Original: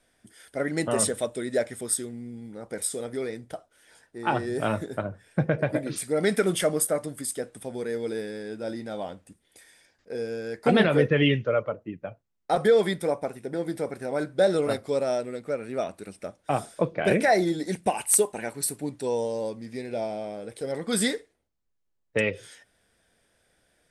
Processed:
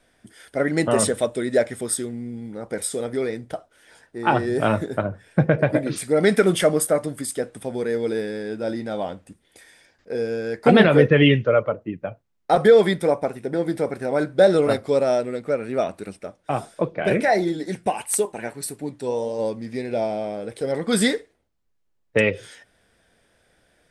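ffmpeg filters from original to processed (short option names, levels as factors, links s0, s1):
-filter_complex "[0:a]asplit=3[s0][s1][s2];[s0]afade=t=out:st=16.17:d=0.02[s3];[s1]flanger=delay=2.1:depth=6.6:regen=77:speed=1.6:shape=triangular,afade=t=in:st=16.17:d=0.02,afade=t=out:st=19.38:d=0.02[s4];[s2]afade=t=in:st=19.38:d=0.02[s5];[s3][s4][s5]amix=inputs=3:normalize=0,highshelf=f=5600:g=-7,volume=2.11"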